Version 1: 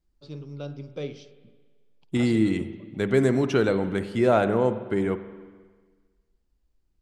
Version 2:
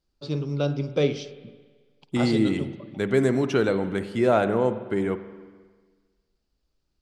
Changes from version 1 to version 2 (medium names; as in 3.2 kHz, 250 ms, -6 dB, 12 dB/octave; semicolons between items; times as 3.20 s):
first voice +11.5 dB; master: add bass shelf 63 Hz -7.5 dB